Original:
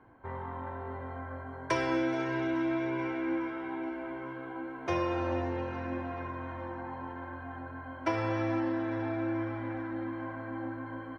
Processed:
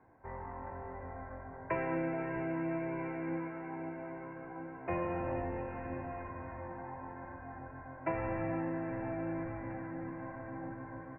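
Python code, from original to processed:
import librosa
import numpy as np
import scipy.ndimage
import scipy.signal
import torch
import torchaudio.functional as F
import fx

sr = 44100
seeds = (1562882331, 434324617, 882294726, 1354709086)

y = fx.octave_divider(x, sr, octaves=1, level_db=-2.0)
y = scipy.signal.sosfilt(scipy.signal.cheby1(6, 6, 2700.0, 'lowpass', fs=sr, output='sos'), y)
y = F.gain(torch.from_numpy(y), -2.0).numpy()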